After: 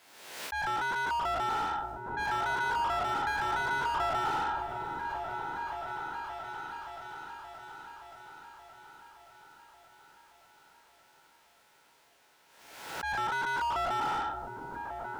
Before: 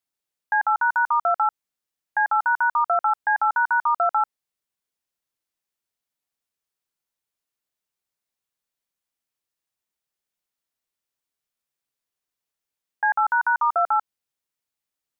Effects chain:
peak hold with a decay on every bin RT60 0.50 s
notch filter 1,200 Hz, Q 9.1
reversed playback
downward compressor 8 to 1, threshold −34 dBFS, peak gain reduction 16 dB
reversed playback
volume swells 143 ms
mid-hump overdrive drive 36 dB, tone 1,500 Hz, clips at −24 dBFS
on a send: echo whose low-pass opens from repeat to repeat 574 ms, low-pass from 400 Hz, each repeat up 1 octave, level −3 dB
on the sum: background raised ahead of every attack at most 52 dB per second

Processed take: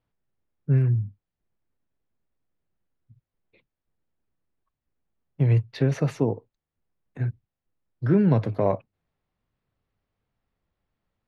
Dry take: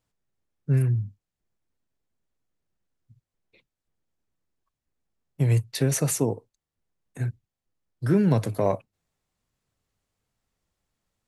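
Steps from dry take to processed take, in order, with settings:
high-frequency loss of the air 280 metres
level +1.5 dB

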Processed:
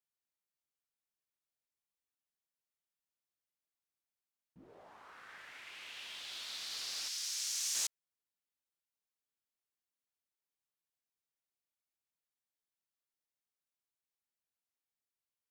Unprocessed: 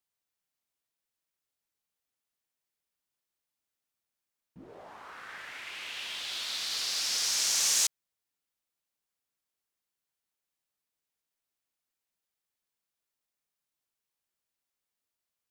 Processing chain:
0:07.08–0:07.75: guitar amp tone stack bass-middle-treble 10-0-10
level −9 dB

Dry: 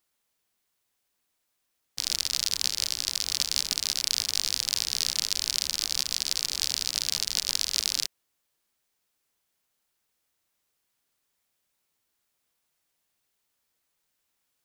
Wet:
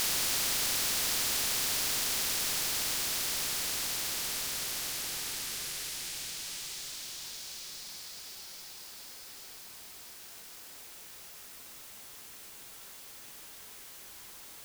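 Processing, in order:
extreme stretch with random phases 9.8×, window 1.00 s, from 0:08.00
feedback delay with all-pass diffusion 965 ms, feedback 43%, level −8 dB
every bin compressed towards the loudest bin 4 to 1

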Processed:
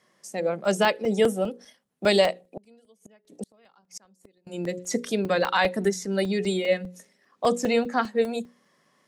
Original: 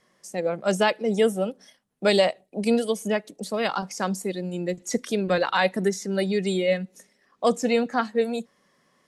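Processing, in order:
high-pass filter 100 Hz 12 dB per octave
mains-hum notches 60/120/180/240/300/360/420/480/540 Hz
0:02.43–0:04.47: gate with flip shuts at −24 dBFS, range −33 dB
regular buffer underruns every 0.20 s, samples 128, zero, from 0:00.65

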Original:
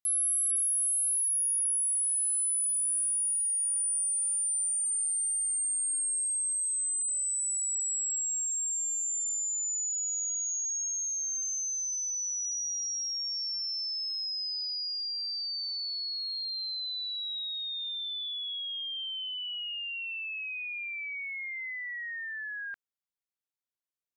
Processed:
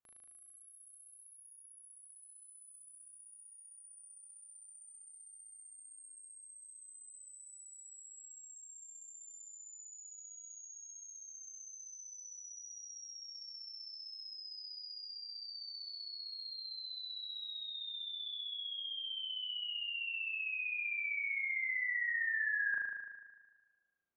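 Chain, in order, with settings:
low-pass filter 1,600 Hz 12 dB per octave
on a send: flutter between parallel walls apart 6.4 metres, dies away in 1.4 s
on the sum: level +2 dB

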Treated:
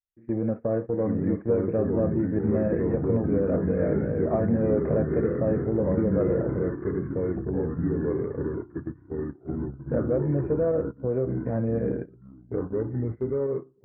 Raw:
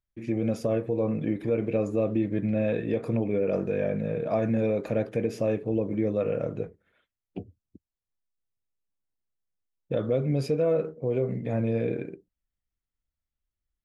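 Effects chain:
fake sidechain pumping 112 BPM, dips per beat 1, −6 dB, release 67 ms
harmonic generator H 5 −32 dB, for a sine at −14.5 dBFS
delay with pitch and tempo change per echo 722 ms, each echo −3 semitones, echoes 3
Butterworth low-pass 1,800 Hz 48 dB per octave
noise gate −30 dBFS, range −15 dB

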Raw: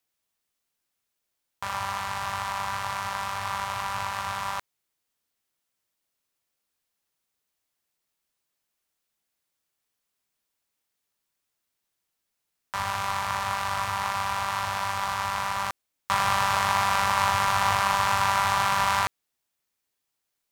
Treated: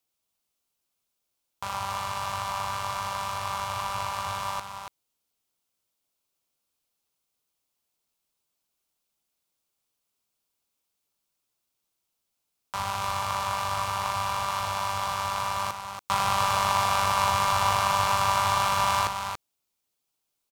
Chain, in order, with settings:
parametric band 1,800 Hz −8.5 dB 0.49 octaves
on a send: single-tap delay 283 ms −7 dB

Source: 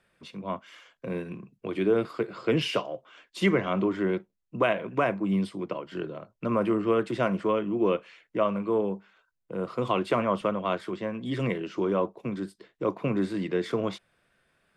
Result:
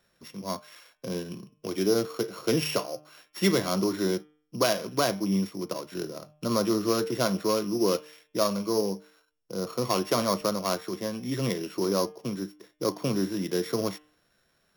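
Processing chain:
samples sorted by size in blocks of 8 samples
hum removal 151.3 Hz, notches 23

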